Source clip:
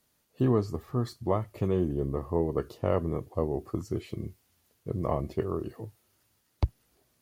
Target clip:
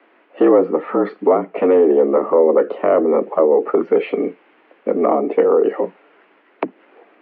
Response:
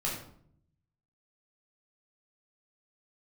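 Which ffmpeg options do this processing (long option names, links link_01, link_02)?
-filter_complex "[0:a]acrossover=split=520[link_01][link_02];[link_02]acompressor=threshold=-44dB:ratio=6[link_03];[link_01][link_03]amix=inputs=2:normalize=0,apsyclip=30dB,highpass=frequency=210:width_type=q:width=0.5412,highpass=frequency=210:width_type=q:width=1.307,lowpass=frequency=2500:width_type=q:width=0.5176,lowpass=frequency=2500:width_type=q:width=0.7071,lowpass=frequency=2500:width_type=q:width=1.932,afreqshift=75,volume=-5.5dB"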